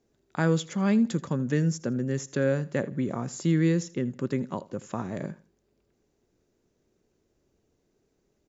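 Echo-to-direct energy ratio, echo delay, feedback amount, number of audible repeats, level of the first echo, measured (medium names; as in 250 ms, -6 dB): -19.5 dB, 81 ms, 29%, 2, -20.0 dB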